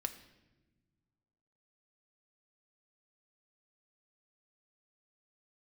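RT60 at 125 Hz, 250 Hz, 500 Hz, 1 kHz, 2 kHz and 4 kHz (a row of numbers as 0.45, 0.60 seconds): 2.3, 2.1, 1.5, 0.95, 0.95, 0.85 seconds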